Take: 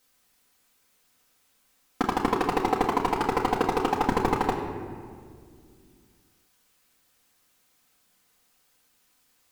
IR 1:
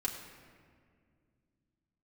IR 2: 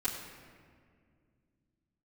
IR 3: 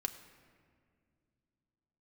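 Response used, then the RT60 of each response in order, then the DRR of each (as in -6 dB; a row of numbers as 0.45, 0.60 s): 1; 2.1, 2.1, 2.1 s; -3.5, -12.5, 5.5 dB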